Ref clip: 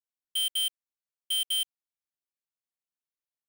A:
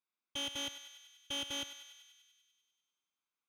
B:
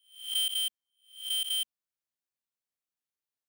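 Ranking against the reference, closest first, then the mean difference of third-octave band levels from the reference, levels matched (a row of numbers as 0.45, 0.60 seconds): B, A; 1.0, 16.0 decibels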